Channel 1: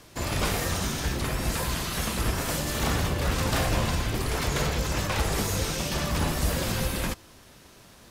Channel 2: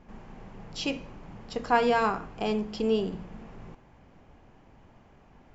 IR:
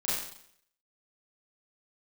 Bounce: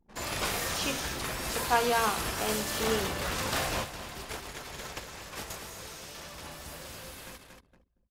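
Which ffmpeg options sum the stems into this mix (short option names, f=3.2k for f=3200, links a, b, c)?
-filter_complex "[0:a]volume=-2dB,asplit=2[a][b];[b]volume=-12dB[c];[1:a]volume=-1dB,asplit=2[d][e];[e]apad=whole_len=357260[f];[a][f]sidechaingate=range=-33dB:threshold=-53dB:ratio=16:detection=peak[g];[c]aecho=0:1:232|464|696|928|1160|1392|1624|1856:1|0.52|0.27|0.141|0.0731|0.038|0.0198|0.0103[h];[g][d][h]amix=inputs=3:normalize=0,anlmdn=0.00631,lowshelf=f=310:g=-11.5"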